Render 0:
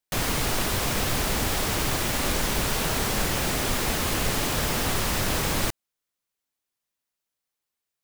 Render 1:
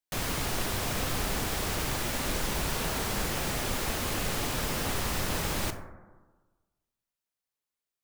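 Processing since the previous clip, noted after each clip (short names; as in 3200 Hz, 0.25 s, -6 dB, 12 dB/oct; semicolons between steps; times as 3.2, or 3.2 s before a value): reverb RT60 1.3 s, pre-delay 22 ms, DRR 7.5 dB; gain -6 dB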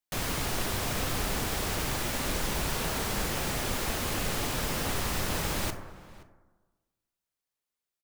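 outdoor echo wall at 90 m, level -19 dB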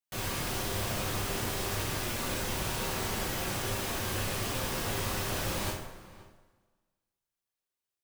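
two-slope reverb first 0.48 s, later 1.5 s, from -16 dB, DRR -4 dB; gain -7.5 dB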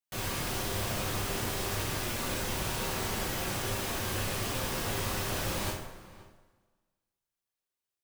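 nothing audible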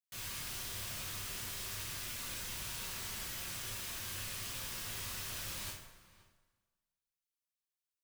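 passive tone stack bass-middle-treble 5-5-5; notch 800 Hz, Q 12; gain +1 dB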